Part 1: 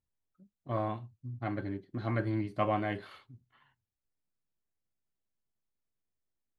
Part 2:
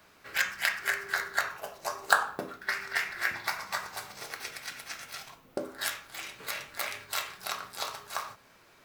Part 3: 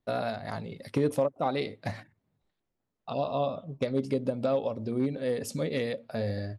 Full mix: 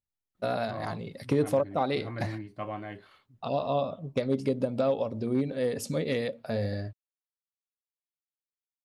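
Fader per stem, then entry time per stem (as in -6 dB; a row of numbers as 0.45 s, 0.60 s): -6.5 dB, mute, +1.0 dB; 0.00 s, mute, 0.35 s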